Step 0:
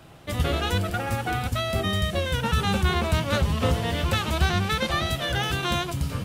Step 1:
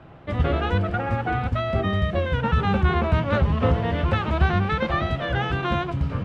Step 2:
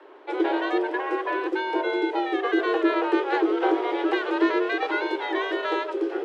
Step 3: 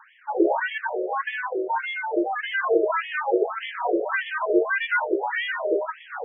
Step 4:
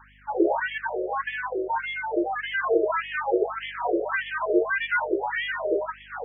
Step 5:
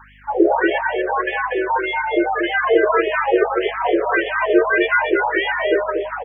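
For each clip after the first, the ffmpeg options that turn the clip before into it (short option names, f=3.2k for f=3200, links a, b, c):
-af "lowpass=1.9k,volume=3dB"
-af "afreqshift=260,volume=-2.5dB"
-af "afftfilt=real='re*between(b*sr/1024,460*pow(2500/460,0.5+0.5*sin(2*PI*1.7*pts/sr))/1.41,460*pow(2500/460,0.5+0.5*sin(2*PI*1.7*pts/sr))*1.41)':imag='im*between(b*sr/1024,460*pow(2500/460,0.5+0.5*sin(2*PI*1.7*pts/sr))/1.41,460*pow(2500/460,0.5+0.5*sin(2*PI*1.7*pts/sr))*1.41)':win_size=1024:overlap=0.75,volume=7dB"
-af "aeval=exprs='val(0)+0.00178*(sin(2*PI*50*n/s)+sin(2*PI*2*50*n/s)/2+sin(2*PI*3*50*n/s)/3+sin(2*PI*4*50*n/s)/4+sin(2*PI*5*50*n/s)/5)':c=same,volume=-1.5dB"
-af "aecho=1:1:237:0.562,volume=7dB"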